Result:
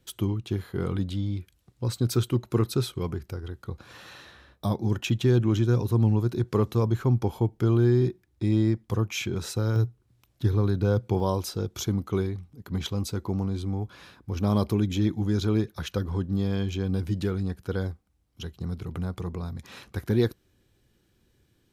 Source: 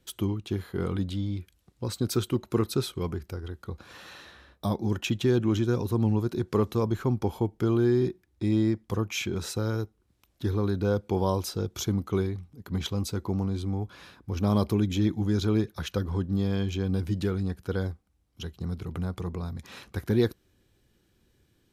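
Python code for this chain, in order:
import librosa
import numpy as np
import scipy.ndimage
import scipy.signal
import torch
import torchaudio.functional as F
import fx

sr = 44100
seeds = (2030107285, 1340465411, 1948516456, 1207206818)

y = fx.peak_eq(x, sr, hz=120.0, db=fx.steps((0.0, 7.0), (9.76, 14.0), (11.2, 2.5)), octaves=0.35)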